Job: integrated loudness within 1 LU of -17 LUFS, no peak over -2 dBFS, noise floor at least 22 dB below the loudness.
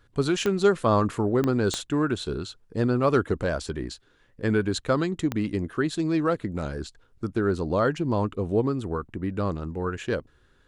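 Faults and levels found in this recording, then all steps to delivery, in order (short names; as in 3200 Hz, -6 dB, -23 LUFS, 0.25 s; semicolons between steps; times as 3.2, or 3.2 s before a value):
clicks 4; loudness -26.5 LUFS; peak -9.0 dBFS; loudness target -17.0 LUFS
-> de-click; gain +9.5 dB; limiter -2 dBFS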